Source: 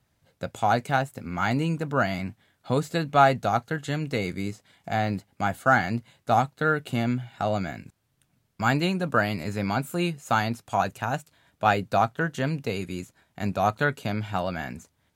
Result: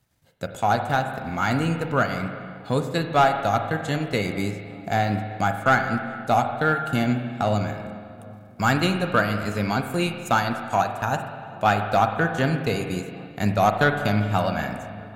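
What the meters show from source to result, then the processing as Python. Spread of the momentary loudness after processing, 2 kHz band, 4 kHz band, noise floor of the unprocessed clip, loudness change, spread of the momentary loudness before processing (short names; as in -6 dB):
11 LU, +3.0 dB, +3.5 dB, -72 dBFS, +3.0 dB, 11 LU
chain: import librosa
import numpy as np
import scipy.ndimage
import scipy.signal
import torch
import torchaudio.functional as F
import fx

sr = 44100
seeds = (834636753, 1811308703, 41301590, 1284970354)

y = fx.high_shelf(x, sr, hz=5200.0, db=5.5)
y = fx.transient(y, sr, attack_db=1, sustain_db=-11)
y = fx.rider(y, sr, range_db=10, speed_s=2.0)
y = 10.0 ** (-11.0 / 20.0) * np.tanh(y / 10.0 ** (-11.0 / 20.0))
y = fx.echo_filtered(y, sr, ms=394, feedback_pct=77, hz=1500.0, wet_db=-22.0)
y = fx.rev_spring(y, sr, rt60_s=2.0, pass_ms=(38, 48), chirp_ms=50, drr_db=6.0)
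y = y * 10.0 ** (2.0 / 20.0)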